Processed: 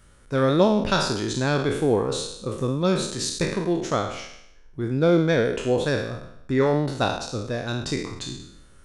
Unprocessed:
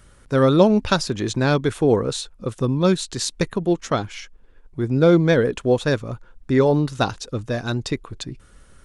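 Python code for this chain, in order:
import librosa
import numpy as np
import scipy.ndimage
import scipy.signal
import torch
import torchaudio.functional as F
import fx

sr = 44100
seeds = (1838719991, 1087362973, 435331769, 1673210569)

y = fx.spec_trails(x, sr, decay_s=0.76)
y = y * librosa.db_to_amplitude(-5.0)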